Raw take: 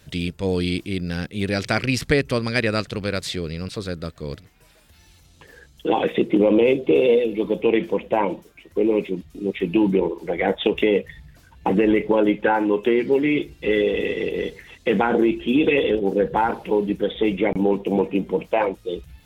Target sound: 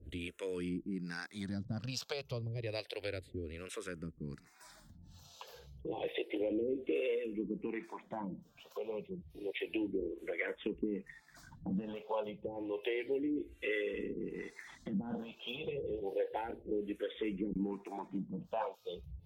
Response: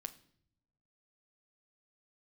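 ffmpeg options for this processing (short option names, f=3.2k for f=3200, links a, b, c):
-filter_complex "[0:a]acrossover=split=410[a][b];[a]aeval=exprs='val(0)*(1-1/2+1/2*cos(2*PI*1.2*n/s))':c=same[c];[b]aeval=exprs='val(0)*(1-1/2-1/2*cos(2*PI*1.2*n/s))':c=same[d];[c][d]amix=inputs=2:normalize=0,acompressor=threshold=-49dB:ratio=2,asplit=2[e][f];[f]afreqshift=-0.3[g];[e][g]amix=inputs=2:normalize=1,volume=4.5dB"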